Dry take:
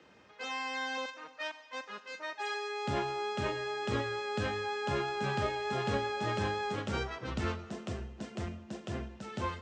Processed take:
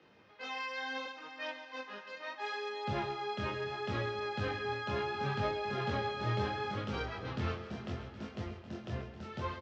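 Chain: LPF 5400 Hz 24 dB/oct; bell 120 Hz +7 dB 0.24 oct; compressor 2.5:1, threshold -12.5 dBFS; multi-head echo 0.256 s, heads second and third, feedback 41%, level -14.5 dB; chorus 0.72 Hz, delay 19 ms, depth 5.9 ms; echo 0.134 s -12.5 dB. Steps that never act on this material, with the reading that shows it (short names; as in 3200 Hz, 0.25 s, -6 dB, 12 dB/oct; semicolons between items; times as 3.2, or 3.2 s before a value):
compressor, threshold -12.5 dBFS: input peak -18.0 dBFS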